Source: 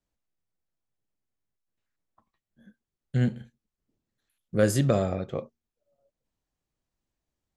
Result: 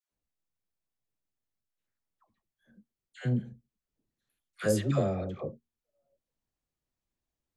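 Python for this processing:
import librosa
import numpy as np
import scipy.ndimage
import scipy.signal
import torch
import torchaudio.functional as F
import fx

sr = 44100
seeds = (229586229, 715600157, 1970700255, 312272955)

y = fx.dispersion(x, sr, late='lows', ms=114.0, hz=770.0)
y = F.gain(torch.from_numpy(y), -4.5).numpy()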